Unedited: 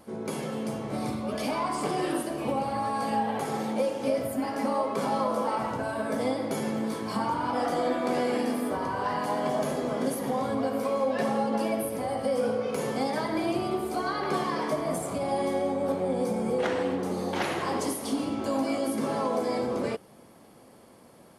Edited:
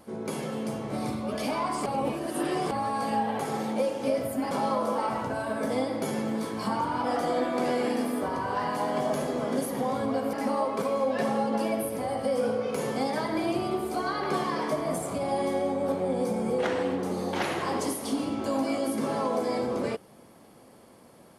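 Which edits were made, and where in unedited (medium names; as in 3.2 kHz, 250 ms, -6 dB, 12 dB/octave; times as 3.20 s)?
1.86–2.71 s: reverse
4.51–5.00 s: move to 10.82 s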